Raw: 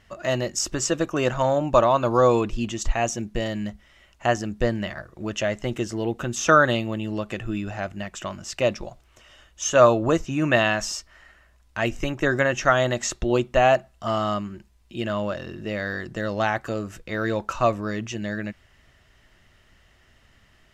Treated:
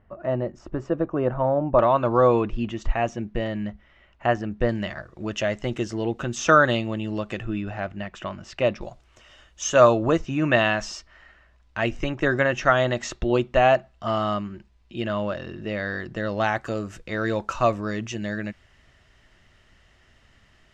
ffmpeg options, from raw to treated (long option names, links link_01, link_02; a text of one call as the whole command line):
ffmpeg -i in.wav -af "asetnsamples=nb_out_samples=441:pad=0,asendcmd='1.79 lowpass f 2500;4.69 lowpass f 6100;7.45 lowpass f 3300;8.81 lowpass f 7400;10.06 lowpass f 4500;16.44 lowpass f 8500',lowpass=1000" out.wav